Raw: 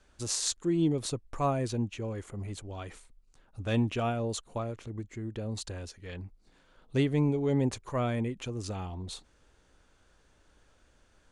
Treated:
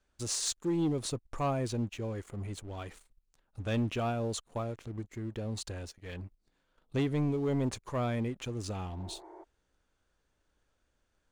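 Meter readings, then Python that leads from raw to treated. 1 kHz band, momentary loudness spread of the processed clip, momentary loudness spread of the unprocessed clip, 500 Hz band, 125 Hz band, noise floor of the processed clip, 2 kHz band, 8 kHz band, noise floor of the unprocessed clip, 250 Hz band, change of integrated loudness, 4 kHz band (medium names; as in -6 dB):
-2.0 dB, 13 LU, 15 LU, -2.5 dB, -2.5 dB, -78 dBFS, -2.0 dB, -1.5 dB, -65 dBFS, -2.5 dB, -2.5 dB, -1.5 dB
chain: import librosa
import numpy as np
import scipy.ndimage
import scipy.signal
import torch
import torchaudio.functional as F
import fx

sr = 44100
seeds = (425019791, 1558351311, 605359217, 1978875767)

y = fx.leveller(x, sr, passes=2)
y = fx.spec_repair(y, sr, seeds[0], start_s=9.02, length_s=0.39, low_hz=320.0, high_hz=2300.0, source='before')
y = F.gain(torch.from_numpy(y), -8.5).numpy()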